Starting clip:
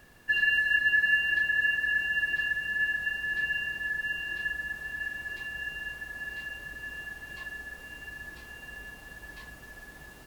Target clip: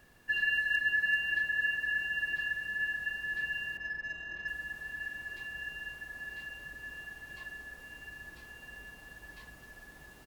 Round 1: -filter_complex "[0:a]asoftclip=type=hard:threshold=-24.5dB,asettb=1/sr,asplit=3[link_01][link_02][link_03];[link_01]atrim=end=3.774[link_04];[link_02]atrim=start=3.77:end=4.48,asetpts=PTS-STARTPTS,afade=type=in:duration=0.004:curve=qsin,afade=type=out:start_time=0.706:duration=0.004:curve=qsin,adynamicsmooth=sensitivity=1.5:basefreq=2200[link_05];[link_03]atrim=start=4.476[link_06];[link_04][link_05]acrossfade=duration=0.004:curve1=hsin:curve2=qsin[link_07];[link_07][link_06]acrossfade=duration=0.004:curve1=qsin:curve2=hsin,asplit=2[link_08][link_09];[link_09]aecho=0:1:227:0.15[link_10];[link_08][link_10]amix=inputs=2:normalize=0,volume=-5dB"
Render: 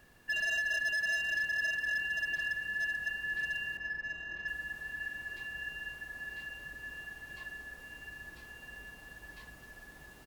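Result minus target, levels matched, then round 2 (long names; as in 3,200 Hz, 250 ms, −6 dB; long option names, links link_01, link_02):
hard clipping: distortion +31 dB
-filter_complex "[0:a]asoftclip=type=hard:threshold=-16dB,asettb=1/sr,asplit=3[link_01][link_02][link_03];[link_01]atrim=end=3.774[link_04];[link_02]atrim=start=3.77:end=4.48,asetpts=PTS-STARTPTS,afade=type=in:duration=0.004:curve=qsin,afade=type=out:start_time=0.706:duration=0.004:curve=qsin,adynamicsmooth=sensitivity=1.5:basefreq=2200[link_05];[link_03]atrim=start=4.476[link_06];[link_04][link_05]acrossfade=duration=0.004:curve1=hsin:curve2=qsin[link_07];[link_07][link_06]acrossfade=duration=0.004:curve1=qsin:curve2=hsin,asplit=2[link_08][link_09];[link_09]aecho=0:1:227:0.15[link_10];[link_08][link_10]amix=inputs=2:normalize=0,volume=-5dB"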